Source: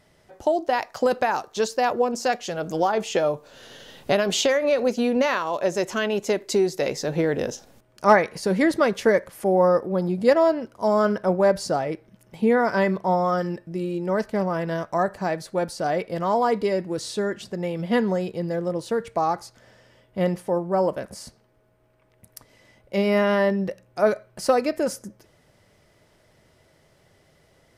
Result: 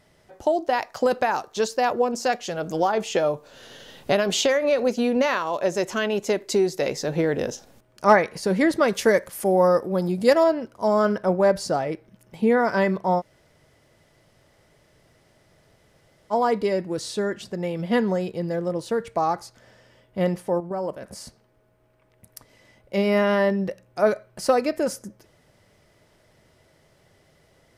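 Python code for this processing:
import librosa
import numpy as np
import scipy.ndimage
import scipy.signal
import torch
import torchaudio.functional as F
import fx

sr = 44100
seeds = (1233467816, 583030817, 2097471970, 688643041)

y = fx.high_shelf(x, sr, hz=4300.0, db=10.0, at=(8.88, 10.44))
y = fx.level_steps(y, sr, step_db=9, at=(20.6, 21.07))
y = fx.edit(y, sr, fx.room_tone_fill(start_s=13.2, length_s=3.12, crossfade_s=0.04), tone=tone)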